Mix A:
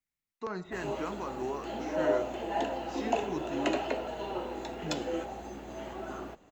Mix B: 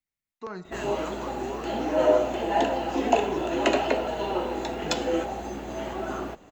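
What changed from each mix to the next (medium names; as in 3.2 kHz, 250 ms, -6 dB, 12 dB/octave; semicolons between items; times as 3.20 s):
background +8.0 dB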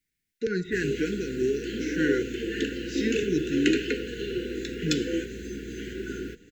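speech +10.5 dB; master: add brick-wall FIR band-stop 500–1400 Hz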